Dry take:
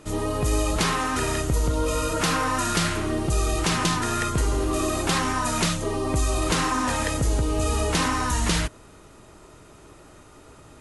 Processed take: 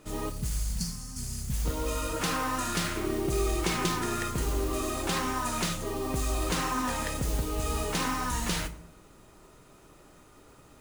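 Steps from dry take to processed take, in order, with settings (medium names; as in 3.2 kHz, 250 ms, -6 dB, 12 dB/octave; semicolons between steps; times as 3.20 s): 0.30–1.65 s: time-frequency box 250–4200 Hz -25 dB; modulation noise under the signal 15 dB; 2.96–4.16 s: small resonant body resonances 370/2200 Hz, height 9 dB; on a send: reverberation RT60 0.85 s, pre-delay 4 ms, DRR 10 dB; on the sum: trim -7 dB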